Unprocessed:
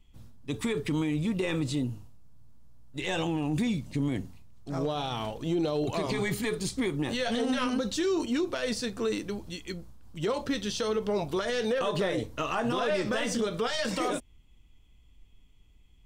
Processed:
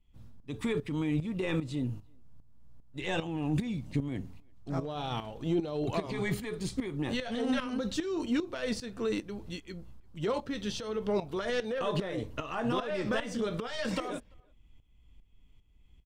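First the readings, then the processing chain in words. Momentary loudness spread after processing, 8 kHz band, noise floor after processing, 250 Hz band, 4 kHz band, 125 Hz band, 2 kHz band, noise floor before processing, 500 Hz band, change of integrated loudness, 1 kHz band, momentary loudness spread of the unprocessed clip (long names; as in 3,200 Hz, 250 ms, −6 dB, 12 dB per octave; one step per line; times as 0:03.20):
10 LU, −8.0 dB, −60 dBFS, −3.0 dB, −5.5 dB, −1.5 dB, −4.0 dB, −58 dBFS, −4.0 dB, −3.5 dB, −4.0 dB, 9 LU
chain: bass and treble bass +2 dB, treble −6 dB
shaped tremolo saw up 2.5 Hz, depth 75%
far-end echo of a speakerphone 340 ms, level −30 dB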